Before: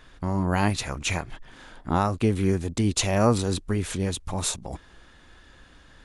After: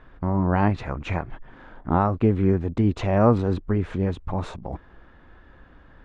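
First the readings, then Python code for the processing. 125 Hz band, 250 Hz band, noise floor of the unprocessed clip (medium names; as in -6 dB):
+3.0 dB, +3.0 dB, -53 dBFS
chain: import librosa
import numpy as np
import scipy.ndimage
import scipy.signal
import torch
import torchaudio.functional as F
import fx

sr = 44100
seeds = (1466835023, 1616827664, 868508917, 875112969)

y = scipy.signal.sosfilt(scipy.signal.butter(2, 1500.0, 'lowpass', fs=sr, output='sos'), x)
y = y * librosa.db_to_amplitude(3.0)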